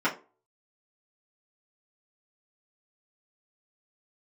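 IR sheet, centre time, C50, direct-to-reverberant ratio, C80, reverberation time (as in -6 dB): 15 ms, 13.5 dB, -9.5 dB, 19.5 dB, 0.35 s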